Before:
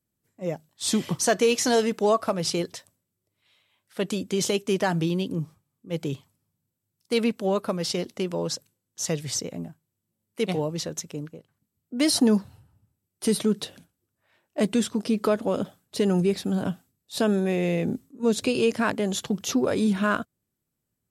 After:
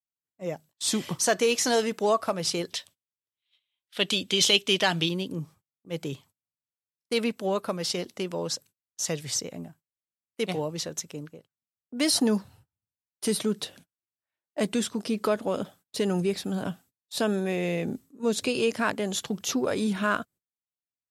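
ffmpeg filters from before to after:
ffmpeg -i in.wav -filter_complex "[0:a]asettb=1/sr,asplit=3[link_01][link_02][link_03];[link_01]atrim=end=2.724[link_04];[link_02]atrim=start=2.72:end=5.09,asetpts=PTS-STARTPTS,afade=type=in:duration=0.004:curve=qsin,afade=type=out:start_time=2.366:duration=0.004:curve=qsin,equalizer=frequency=3300:width_type=o:width=1.1:gain=14.5[link_05];[link_03]atrim=start=5.086[link_06];[link_04][link_05]acrossfade=duration=0.004:curve1=hsin:curve2=qsin[link_07];[link_07][link_06]acrossfade=duration=0.004:curve1=qsin:curve2=hsin,agate=range=-25dB:threshold=-49dB:ratio=16:detection=peak,lowshelf=frequency=490:gain=-5.5" out.wav

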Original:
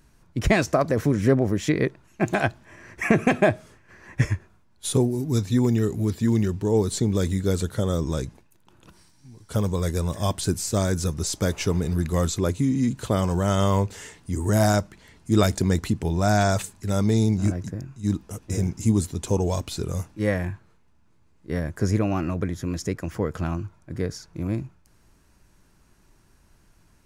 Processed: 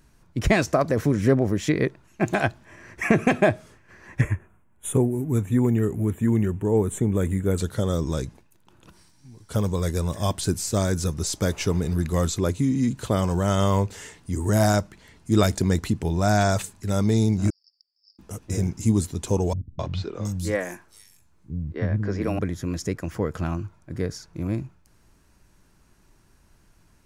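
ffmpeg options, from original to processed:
ffmpeg -i in.wav -filter_complex "[0:a]asettb=1/sr,asplit=3[link_01][link_02][link_03];[link_01]atrim=end=4.214[link_04];[link_02]atrim=start=4.21:end=7.58,asetpts=PTS-STARTPTS,afade=type=in:duration=0.004:curve=qsin,afade=type=out:start_time=3.366:duration=0.004:curve=qsin,asuperstop=centerf=4700:order=4:qfactor=0.93[link_05];[link_03]atrim=start=7.576[link_06];[link_04][link_05]acrossfade=duration=0.004:curve1=hsin:curve2=qsin[link_07];[link_07][link_06]acrossfade=duration=0.004:curve1=qsin:curve2=hsin,asettb=1/sr,asplit=3[link_08][link_09][link_10];[link_08]atrim=end=17.504[link_11];[link_09]atrim=start=17.5:end=18.19,asetpts=PTS-STARTPTS,afade=type=in:duration=0.004:curve=qsin,afade=type=out:start_time=0.686:duration=0.004:curve=qsin,asuperpass=centerf=4900:order=12:qfactor=4.9[link_12];[link_10]atrim=start=18.186[link_13];[link_11][link_12]acrossfade=duration=0.004:curve1=hsin:curve2=qsin[link_14];[link_14][link_13]acrossfade=duration=0.004:curve1=qsin:curve2=hsin,asettb=1/sr,asplit=3[link_15][link_16][link_17];[link_15]atrim=end=19.534[link_18];[link_16]atrim=start=19.53:end=22.39,asetpts=PTS-STARTPTS,afade=type=in:duration=0.004:curve=qsin,afade=type=out:start_time=2.856:duration=0.004:curve=qsin,acrossover=split=230|4600[link_19][link_20][link_21];[link_20]adelay=260[link_22];[link_21]adelay=720[link_23];[link_19][link_22][link_23]amix=inputs=3:normalize=0,atrim=end_sample=126126[link_24];[link_17]atrim=start=22.386[link_25];[link_18][link_24]acrossfade=duration=0.004:curve1=hsin:curve2=qsin[link_26];[link_26][link_25]acrossfade=duration=0.004:curve1=qsin:curve2=hsin" out.wav

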